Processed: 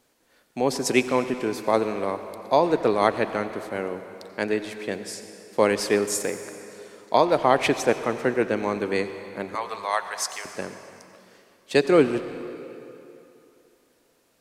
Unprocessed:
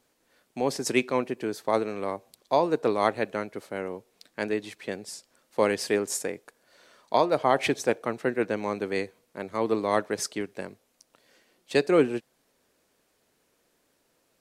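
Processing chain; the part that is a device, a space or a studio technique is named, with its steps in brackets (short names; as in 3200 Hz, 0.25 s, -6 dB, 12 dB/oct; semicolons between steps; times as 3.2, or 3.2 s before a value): 9.55–10.45 HPF 740 Hz 24 dB/oct; saturated reverb return (on a send at -8 dB: reverb RT60 2.7 s, pre-delay 80 ms + soft clip -24.5 dBFS, distortion -11 dB); on the sum: gain +3.5 dB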